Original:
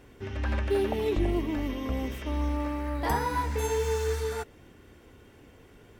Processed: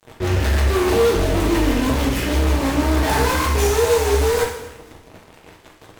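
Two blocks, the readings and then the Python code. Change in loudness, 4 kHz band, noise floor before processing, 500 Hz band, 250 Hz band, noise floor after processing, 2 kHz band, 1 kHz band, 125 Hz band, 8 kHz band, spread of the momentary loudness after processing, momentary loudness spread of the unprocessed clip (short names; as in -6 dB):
+11.5 dB, +16.0 dB, -55 dBFS, +11.5 dB, +11.0 dB, -48 dBFS, +13.5 dB, +10.0 dB, +12.0 dB, +15.5 dB, 5 LU, 6 LU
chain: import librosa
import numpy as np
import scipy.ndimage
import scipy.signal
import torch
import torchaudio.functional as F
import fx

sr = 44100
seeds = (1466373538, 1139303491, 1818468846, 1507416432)

p1 = fx.hum_notches(x, sr, base_hz=60, count=5)
p2 = (np.mod(10.0 ** (30.5 / 20.0) * p1 + 1.0, 2.0) - 1.0) / 10.0 ** (30.5 / 20.0)
p3 = p1 + F.gain(torch.from_numpy(p2), -7.0).numpy()
p4 = fx.rotary(p3, sr, hz=6.3)
p5 = fx.wow_flutter(p4, sr, seeds[0], rate_hz=2.1, depth_cents=130.0)
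p6 = fx.fuzz(p5, sr, gain_db=39.0, gate_db=-47.0)
p7 = fx.echo_feedback(p6, sr, ms=246, feedback_pct=36, wet_db=-21.0)
p8 = fx.rev_double_slope(p7, sr, seeds[1], early_s=0.76, late_s=2.0, knee_db=-25, drr_db=-1.5)
y = F.gain(torch.from_numpy(p8), -7.0).numpy()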